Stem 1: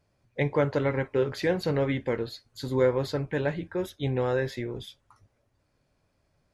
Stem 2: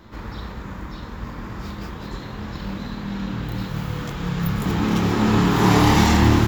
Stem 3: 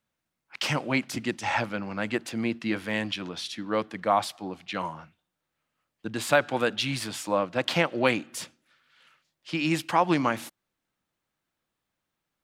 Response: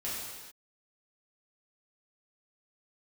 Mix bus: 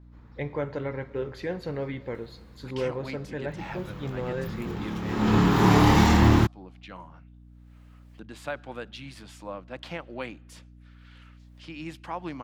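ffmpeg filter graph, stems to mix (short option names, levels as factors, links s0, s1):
-filter_complex "[0:a]volume=0.473,asplit=2[s0][s1];[s1]volume=0.126[s2];[1:a]adynamicequalizer=threshold=0.00708:dfrequency=7700:dqfactor=0.7:tfrequency=7700:tqfactor=0.7:attack=5:release=100:ratio=0.375:range=1.5:mode=boostabove:tftype=highshelf,volume=0.75,afade=t=in:st=3.43:d=0.26:silence=0.281838,afade=t=in:st=5.05:d=0.3:silence=0.316228[s3];[2:a]acompressor=mode=upward:threshold=0.0355:ratio=2.5,adelay=2150,volume=0.251[s4];[3:a]atrim=start_sample=2205[s5];[s2][s5]afir=irnorm=-1:irlink=0[s6];[s0][s3][s4][s6]amix=inputs=4:normalize=0,aeval=exprs='val(0)+0.00355*(sin(2*PI*60*n/s)+sin(2*PI*2*60*n/s)/2+sin(2*PI*3*60*n/s)/3+sin(2*PI*4*60*n/s)/4+sin(2*PI*5*60*n/s)/5)':c=same,highshelf=f=4900:g=-7.5"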